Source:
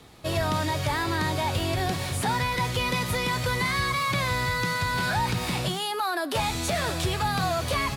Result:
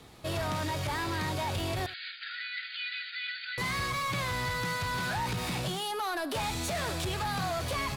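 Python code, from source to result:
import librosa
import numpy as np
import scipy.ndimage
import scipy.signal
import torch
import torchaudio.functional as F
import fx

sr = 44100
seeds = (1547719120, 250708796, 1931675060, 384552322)

y = 10.0 ** (-26.0 / 20.0) * np.tanh(x / 10.0 ** (-26.0 / 20.0))
y = fx.brickwall_bandpass(y, sr, low_hz=1300.0, high_hz=4900.0, at=(1.86, 3.58))
y = y + 10.0 ** (-18.5 / 20.0) * np.pad(y, (int(77 * sr / 1000.0), 0))[:len(y)]
y = y * 10.0 ** (-2.0 / 20.0)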